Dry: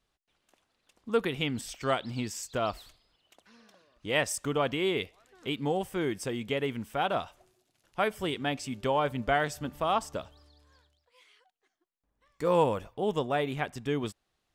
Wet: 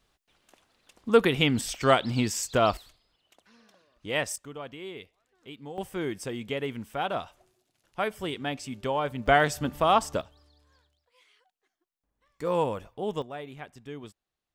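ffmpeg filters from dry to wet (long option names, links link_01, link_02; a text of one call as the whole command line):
ffmpeg -i in.wav -af "asetnsamples=nb_out_samples=441:pad=0,asendcmd='2.77 volume volume -1dB;4.36 volume volume -11.5dB;5.78 volume volume -1dB;9.26 volume volume 6dB;10.21 volume volume -2dB;13.22 volume volume -10dB',volume=7.5dB" out.wav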